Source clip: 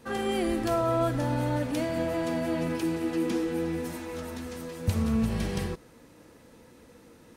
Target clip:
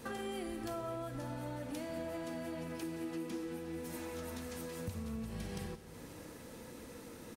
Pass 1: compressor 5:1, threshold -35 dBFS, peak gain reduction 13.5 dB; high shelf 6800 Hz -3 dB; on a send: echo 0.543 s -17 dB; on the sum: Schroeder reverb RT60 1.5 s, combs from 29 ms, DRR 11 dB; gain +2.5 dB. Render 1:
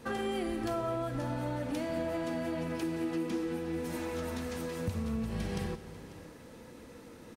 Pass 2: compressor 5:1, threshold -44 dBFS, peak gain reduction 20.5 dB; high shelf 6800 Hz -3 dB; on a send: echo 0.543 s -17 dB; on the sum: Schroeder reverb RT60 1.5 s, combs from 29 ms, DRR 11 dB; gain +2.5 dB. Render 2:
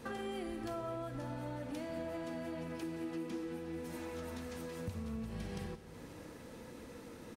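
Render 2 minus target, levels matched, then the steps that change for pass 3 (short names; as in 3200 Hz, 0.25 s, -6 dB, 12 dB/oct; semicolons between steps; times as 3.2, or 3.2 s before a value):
8000 Hz band -5.0 dB
change: high shelf 6800 Hz +6 dB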